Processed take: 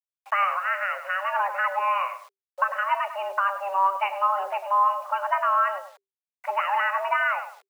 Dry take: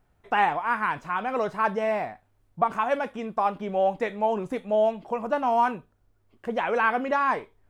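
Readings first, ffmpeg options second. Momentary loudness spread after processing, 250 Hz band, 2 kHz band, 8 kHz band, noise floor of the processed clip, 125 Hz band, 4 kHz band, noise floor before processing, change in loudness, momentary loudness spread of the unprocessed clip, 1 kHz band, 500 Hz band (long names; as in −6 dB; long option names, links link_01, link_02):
6 LU, below −35 dB, +3.5 dB, can't be measured, below −85 dBFS, below −40 dB, +2.5 dB, −67 dBFS, +1.0 dB, 7 LU, +2.5 dB, −6.5 dB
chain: -filter_complex "[0:a]asplit=2[link_01][link_02];[link_02]acompressor=threshold=-31dB:ratio=12,volume=-2.5dB[link_03];[link_01][link_03]amix=inputs=2:normalize=0,aemphasis=mode=production:type=50fm,asplit=2[link_04][link_05];[link_05]adelay=100,lowpass=frequency=1300:poles=1,volume=-9.5dB,asplit=2[link_06][link_07];[link_07]adelay=100,lowpass=frequency=1300:poles=1,volume=0.28,asplit=2[link_08][link_09];[link_09]adelay=100,lowpass=frequency=1300:poles=1,volume=0.28[link_10];[link_04][link_06][link_08][link_10]amix=inputs=4:normalize=0,agate=range=-19dB:threshold=-46dB:ratio=16:detection=peak,afftfilt=real='re*between(b*sr/4096,120,2600)':imag='im*between(b*sr/4096,120,2600)':win_size=4096:overlap=0.75,acrossover=split=330|780[link_11][link_12][link_13];[link_11]asoftclip=type=hard:threshold=-32.5dB[link_14];[link_13]alimiter=limit=-19.5dB:level=0:latency=1:release=407[link_15];[link_14][link_12][link_15]amix=inputs=3:normalize=0,acrusher=bits=8:mix=0:aa=0.000001,afreqshift=390"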